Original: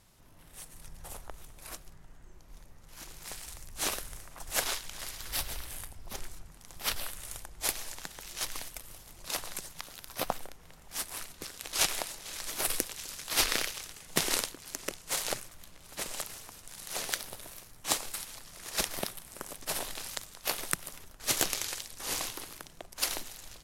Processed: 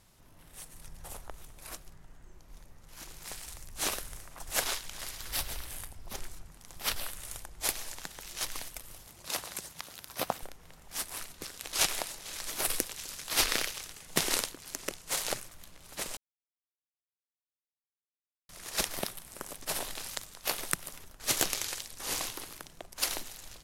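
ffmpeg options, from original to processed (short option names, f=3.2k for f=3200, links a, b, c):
-filter_complex "[0:a]asettb=1/sr,asplit=3[a][b][c];[a]atrim=end=9.074[d];[b]atrim=start=9.07:end=10.43,asetpts=PTS-STARTPTS,afade=t=in:d=0.004:c=qsin,afade=t=out:st=1.356:d=0.004:c=qsin,highpass=59[e];[c]atrim=start=10.426[f];[d][e]acrossfade=d=0.004:c1=hsin:c2=qsin[g];[g][f]acrossfade=d=0.004:c1=qsin:c2=hsin,asplit=3[h][i][j];[h]atrim=end=16.17,asetpts=PTS-STARTPTS,afade=t=out:st=16.166:d=0.004:c=hsin[k];[i]atrim=start=16.17:end=18.49,asetpts=PTS-STARTPTS,volume=0[l];[j]atrim=start=18.49,asetpts=PTS-STARTPTS,afade=t=in:d=0.004:c=hsin[m];[k][l][m]concat=n=3:v=0:a=1"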